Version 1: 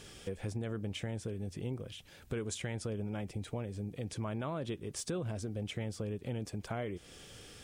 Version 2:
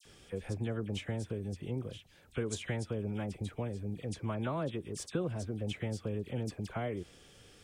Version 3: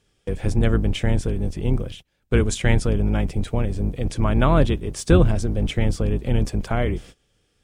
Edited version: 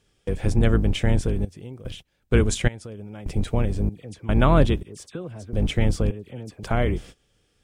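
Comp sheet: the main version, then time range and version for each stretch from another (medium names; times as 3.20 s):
3
1.45–1.85 s: from 1
2.68–3.26 s: from 1
3.89–4.29 s: from 2
4.83–5.53 s: from 2
6.11–6.63 s: from 2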